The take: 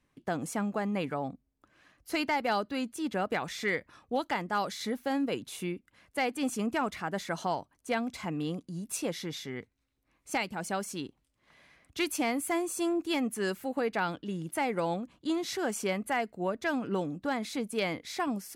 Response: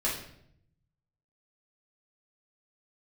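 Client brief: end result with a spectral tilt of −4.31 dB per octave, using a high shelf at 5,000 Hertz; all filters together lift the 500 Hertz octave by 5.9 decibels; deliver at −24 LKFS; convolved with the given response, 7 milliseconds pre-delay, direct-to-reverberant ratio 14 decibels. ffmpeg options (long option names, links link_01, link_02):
-filter_complex "[0:a]equalizer=frequency=500:width_type=o:gain=7.5,highshelf=frequency=5000:gain=-6.5,asplit=2[link_01][link_02];[1:a]atrim=start_sample=2205,adelay=7[link_03];[link_02][link_03]afir=irnorm=-1:irlink=0,volume=-21.5dB[link_04];[link_01][link_04]amix=inputs=2:normalize=0,volume=6dB"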